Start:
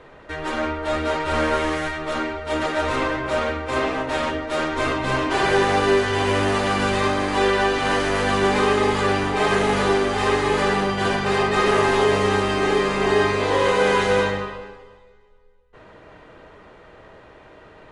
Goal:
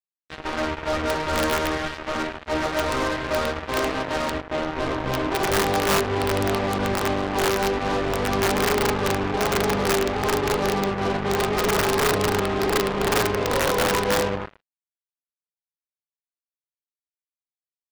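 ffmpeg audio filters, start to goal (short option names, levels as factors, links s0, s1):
-af "asetnsamples=n=441:p=0,asendcmd='4.41 lowpass f 1000',lowpass=2000,aeval=exprs='(mod(4.47*val(0)+1,2)-1)/4.47':c=same,aeval=exprs='val(0)+0.00891*(sin(2*PI*60*n/s)+sin(2*PI*2*60*n/s)/2+sin(2*PI*3*60*n/s)/3+sin(2*PI*4*60*n/s)/4+sin(2*PI*5*60*n/s)/5)':c=same,acrusher=bits=3:mix=0:aa=0.5,volume=0.841"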